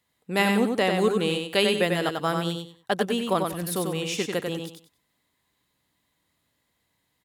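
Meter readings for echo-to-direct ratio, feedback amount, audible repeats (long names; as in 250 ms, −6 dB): −4.0 dB, 25%, 3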